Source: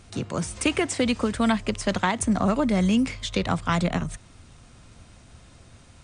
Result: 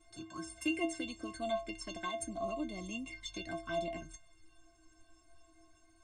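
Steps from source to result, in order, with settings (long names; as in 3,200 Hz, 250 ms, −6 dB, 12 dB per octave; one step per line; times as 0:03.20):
flanger swept by the level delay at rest 3 ms, full sweep at −20 dBFS
stiff-string resonator 320 Hz, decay 0.34 s, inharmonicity 0.03
level +5 dB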